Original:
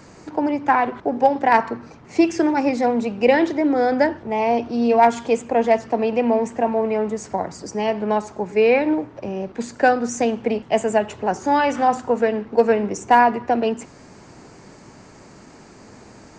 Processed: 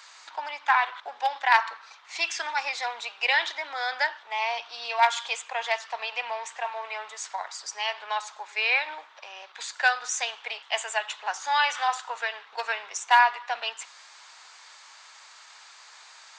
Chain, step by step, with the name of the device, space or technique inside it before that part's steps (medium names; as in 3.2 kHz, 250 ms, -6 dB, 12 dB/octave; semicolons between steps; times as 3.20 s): headphones lying on a table (high-pass 1 kHz 24 dB/octave; peaking EQ 3.6 kHz +11.5 dB 0.55 oct)